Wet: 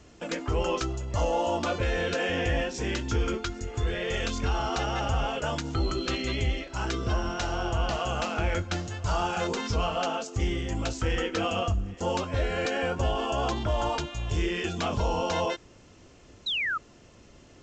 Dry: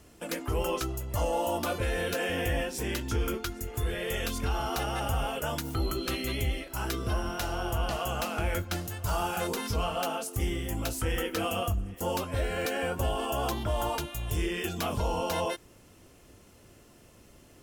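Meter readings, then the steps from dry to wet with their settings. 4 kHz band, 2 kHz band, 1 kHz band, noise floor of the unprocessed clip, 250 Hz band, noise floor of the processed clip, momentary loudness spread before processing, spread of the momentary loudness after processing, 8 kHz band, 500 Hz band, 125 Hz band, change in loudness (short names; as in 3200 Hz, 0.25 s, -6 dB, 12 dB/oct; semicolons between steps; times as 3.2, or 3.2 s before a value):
+3.0 dB, +3.5 dB, +2.5 dB, -56 dBFS, +2.5 dB, -54 dBFS, 3 LU, 4 LU, -1.5 dB, +2.5 dB, +2.5 dB, +2.0 dB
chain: vibrato 2.3 Hz 7.8 cents; painted sound fall, 16.46–16.78, 1200–4100 Hz -31 dBFS; gain +2.5 dB; G.722 64 kbps 16000 Hz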